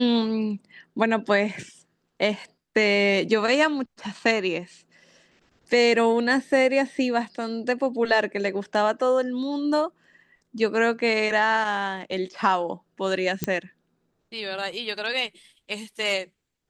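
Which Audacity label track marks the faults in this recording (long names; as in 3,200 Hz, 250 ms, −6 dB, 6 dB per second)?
13.440000	13.440000	click −9 dBFS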